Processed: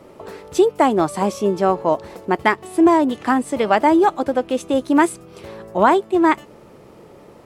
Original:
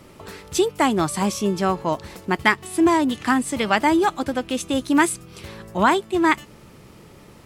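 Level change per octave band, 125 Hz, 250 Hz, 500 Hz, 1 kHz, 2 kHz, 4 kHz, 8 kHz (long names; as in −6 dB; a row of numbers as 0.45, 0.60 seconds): −1.5, +2.5, +6.0, +3.5, −1.5, −4.5, −5.5 decibels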